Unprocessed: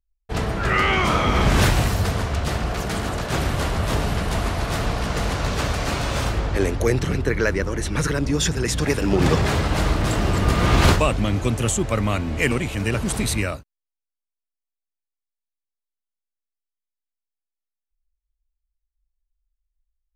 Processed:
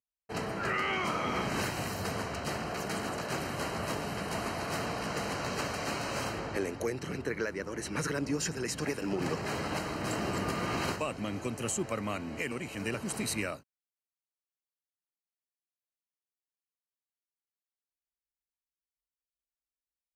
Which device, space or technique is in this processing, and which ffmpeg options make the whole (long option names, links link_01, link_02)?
PA system with an anti-feedback notch: -af "highpass=170,asuperstop=centerf=3500:order=8:qfactor=6.5,alimiter=limit=-14.5dB:level=0:latency=1:release=487,volume=-7.5dB"